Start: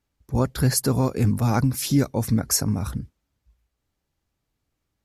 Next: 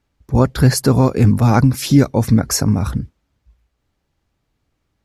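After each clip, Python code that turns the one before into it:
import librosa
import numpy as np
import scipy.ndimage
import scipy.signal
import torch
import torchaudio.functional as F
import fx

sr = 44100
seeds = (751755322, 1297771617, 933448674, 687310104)

y = fx.high_shelf(x, sr, hz=7000.0, db=-11.0)
y = F.gain(torch.from_numpy(y), 8.5).numpy()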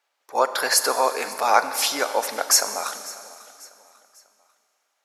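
y = scipy.signal.sosfilt(scipy.signal.butter(4, 600.0, 'highpass', fs=sr, output='sos'), x)
y = fx.echo_feedback(y, sr, ms=545, feedback_pct=41, wet_db=-20.0)
y = fx.rev_schroeder(y, sr, rt60_s=2.5, comb_ms=30, drr_db=10.5)
y = F.gain(torch.from_numpy(y), 2.5).numpy()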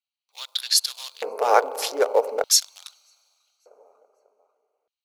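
y = fx.wiener(x, sr, points=25)
y = fx.quant_float(y, sr, bits=4)
y = fx.filter_lfo_highpass(y, sr, shape='square', hz=0.41, low_hz=440.0, high_hz=3600.0, q=5.6)
y = F.gain(torch.from_numpy(y), -3.0).numpy()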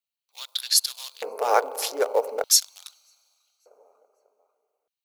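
y = fx.high_shelf(x, sr, hz=9300.0, db=9.0)
y = F.gain(torch.from_numpy(y), -3.0).numpy()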